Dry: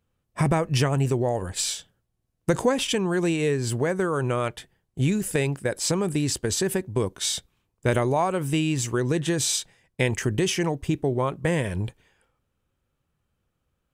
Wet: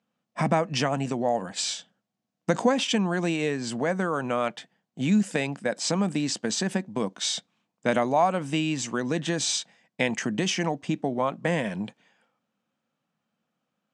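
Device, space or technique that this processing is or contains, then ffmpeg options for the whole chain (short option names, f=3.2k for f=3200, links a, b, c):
television speaker: -af "highpass=f=180:w=0.5412,highpass=f=180:w=1.3066,equalizer=f=210:t=q:w=4:g=7,equalizer=f=390:t=q:w=4:g=-10,equalizer=f=710:t=q:w=4:g=5,lowpass=f=7.1k:w=0.5412,lowpass=f=7.1k:w=1.3066"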